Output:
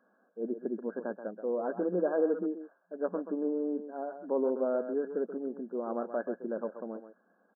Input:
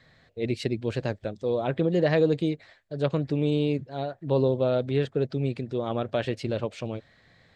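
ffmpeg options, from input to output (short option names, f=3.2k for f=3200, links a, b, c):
-filter_complex "[0:a]asplit=2[a][b];[b]adelay=130,highpass=300,lowpass=3.4k,asoftclip=type=hard:threshold=-20dB,volume=-9dB[c];[a][c]amix=inputs=2:normalize=0,afftfilt=real='re*between(b*sr/4096,180,1700)':imag='im*between(b*sr/4096,180,1700)':win_size=4096:overlap=0.75,volume=-5.5dB"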